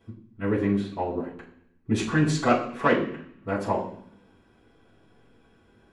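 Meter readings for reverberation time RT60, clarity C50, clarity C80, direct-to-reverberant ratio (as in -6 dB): 0.65 s, 7.5 dB, 10.5 dB, -10.5 dB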